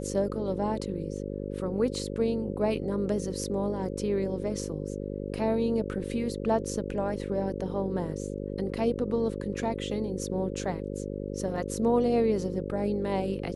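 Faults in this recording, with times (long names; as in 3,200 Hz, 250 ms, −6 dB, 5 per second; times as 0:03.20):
mains buzz 50 Hz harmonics 11 −35 dBFS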